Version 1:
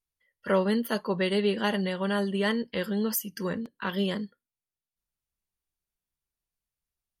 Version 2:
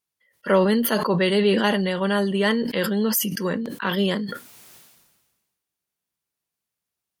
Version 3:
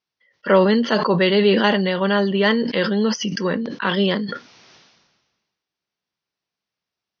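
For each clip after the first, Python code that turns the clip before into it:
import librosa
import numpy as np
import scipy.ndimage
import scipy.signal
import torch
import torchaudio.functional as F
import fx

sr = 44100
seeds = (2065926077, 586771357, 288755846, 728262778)

y1 = scipy.signal.sosfilt(scipy.signal.butter(2, 140.0, 'highpass', fs=sr, output='sos'), x)
y1 = fx.sustainer(y1, sr, db_per_s=41.0)
y1 = y1 * 10.0 ** (6.0 / 20.0)
y2 = scipy.signal.sosfilt(scipy.signal.butter(16, 6000.0, 'lowpass', fs=sr, output='sos'), y1)
y2 = fx.low_shelf(y2, sr, hz=79.0, db=-10.0)
y2 = y2 * 10.0 ** (4.0 / 20.0)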